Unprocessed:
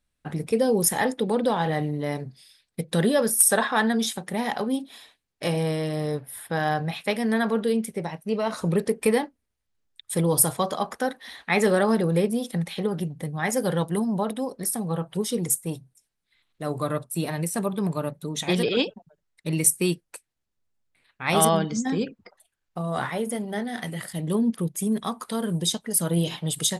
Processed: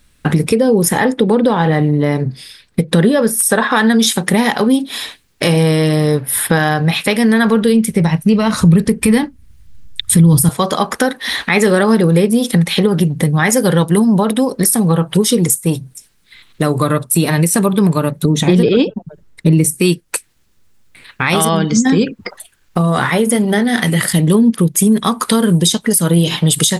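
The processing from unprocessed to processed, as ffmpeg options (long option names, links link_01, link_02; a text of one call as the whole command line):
ffmpeg -i in.wav -filter_complex "[0:a]asettb=1/sr,asplit=3[link_01][link_02][link_03];[link_01]atrim=end=0.554[link_04];[link_02]atrim=start=0.55:end=3.71,asetpts=PTS-STARTPTS,afade=type=in:duration=0.004:curve=qsin,afade=type=out:start_time=3.156:duration=0.004:curve=qsin,highshelf=frequency=2900:gain=-10[link_05];[link_03]atrim=start=3.706[link_06];[link_04][link_05]acrossfade=duration=0.004:curve1=hsin:curve2=qsin[link_07];[link_07][link_06]acrossfade=duration=0.004:curve1=qsin:curve2=hsin,asettb=1/sr,asplit=3[link_08][link_09][link_10];[link_08]atrim=end=7.064[link_11];[link_09]atrim=start=7.06:end=10.49,asetpts=PTS-STARTPTS,afade=type=in:duration=0.004:curve=qsin,afade=type=out:start_time=3.426:duration=0.004:curve=qsin,asubboost=boost=11:cutoff=170[link_12];[link_10]atrim=start=10.486[link_13];[link_11][link_12]acrossfade=duration=0.004:curve1=hsin:curve2=qsin[link_14];[link_14][link_13]acrossfade=duration=0.004:curve1=qsin:curve2=hsin,asettb=1/sr,asplit=3[link_15][link_16][link_17];[link_15]atrim=end=18.254[link_18];[link_16]atrim=start=18.25:end=19.8,asetpts=PTS-STARTPTS,afade=type=in:duration=0.004:curve=qsin,afade=type=out:start_time=1.546:duration=0.004:curve=qsin,tiltshelf=frequency=850:gain=7[link_19];[link_17]atrim=start=19.796[link_20];[link_18][link_19]acrossfade=duration=0.004:curve1=hsin:curve2=qsin[link_21];[link_21][link_20]acrossfade=duration=0.004:curve1=qsin:curve2=hsin,acompressor=threshold=-37dB:ratio=3,equalizer=frequency=690:width=1.9:gain=-6,alimiter=level_in=26dB:limit=-1dB:release=50:level=0:latency=1,volume=-1dB" out.wav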